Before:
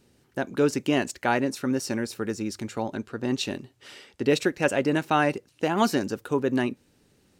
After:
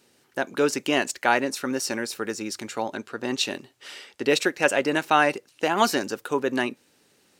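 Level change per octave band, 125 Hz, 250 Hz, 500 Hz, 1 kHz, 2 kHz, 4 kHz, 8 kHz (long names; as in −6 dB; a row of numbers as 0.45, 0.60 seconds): −7.5, −2.5, +1.0, +3.5, +5.0, +5.5, +5.5 decibels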